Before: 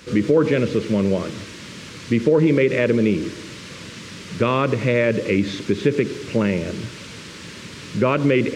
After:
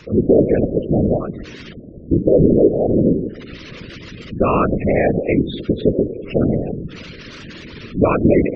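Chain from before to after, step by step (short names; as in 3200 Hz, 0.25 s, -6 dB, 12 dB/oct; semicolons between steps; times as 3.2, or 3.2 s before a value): 1.73–2.93 steep low-pass 610 Hz 96 dB/oct; spectral gate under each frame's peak -15 dB strong; whisperiser; gain +3.5 dB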